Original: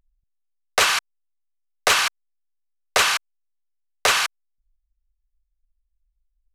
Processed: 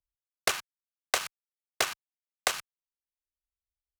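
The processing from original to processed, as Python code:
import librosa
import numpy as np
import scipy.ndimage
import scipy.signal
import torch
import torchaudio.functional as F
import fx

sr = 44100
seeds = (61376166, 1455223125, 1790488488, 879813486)

y = fx.cheby_harmonics(x, sr, harmonics=(3, 7), levels_db=(-12, -29), full_scale_db=-6.5)
y = fx.stretch_grains(y, sr, factor=0.61, grain_ms=22.0)
y = fx.band_squash(y, sr, depth_pct=100)
y = y * librosa.db_to_amplitude(-1.0)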